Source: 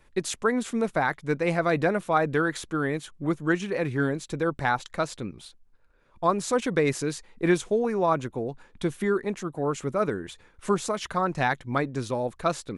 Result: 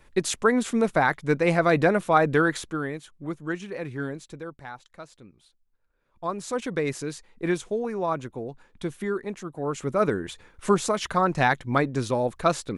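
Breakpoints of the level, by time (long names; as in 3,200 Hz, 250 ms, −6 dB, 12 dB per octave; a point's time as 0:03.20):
0:02.49 +3.5 dB
0:02.99 −6 dB
0:04.20 −6 dB
0:04.63 −15 dB
0:05.37 −15 dB
0:06.63 −3.5 dB
0:09.55 −3.5 dB
0:10.05 +3.5 dB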